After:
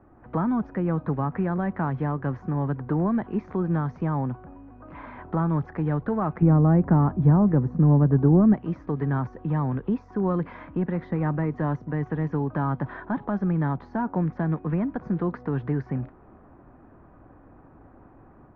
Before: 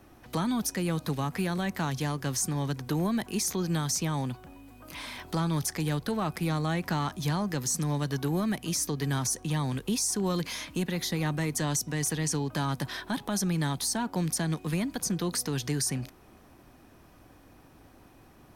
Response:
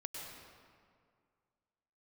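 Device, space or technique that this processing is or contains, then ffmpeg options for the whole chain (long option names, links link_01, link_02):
action camera in a waterproof case: -filter_complex "[0:a]asettb=1/sr,asplit=3[link_01][link_02][link_03];[link_01]atrim=end=6.424[link_04];[link_02]atrim=start=6.42:end=8.54,asetpts=PTS-STARTPTS,afade=type=in:duration=0.004:curve=qsin,afade=type=out:start_time=2.116:duration=0.004:curve=qsin,tiltshelf=frequency=860:gain=8.5[link_05];[link_03]atrim=start=8.536[link_06];[link_04][link_05]acrossfade=duration=0.004:curve1=hsin:curve2=qsin[link_07];[link_07][link_06]acrossfade=duration=0.004:curve1=qsin:curve2=hsin,lowpass=frequency=1500:width=0.5412,lowpass=frequency=1500:width=1.3066,dynaudnorm=framelen=130:gausssize=3:maxgain=4.5dB" -ar 16000 -c:a aac -b:a 48k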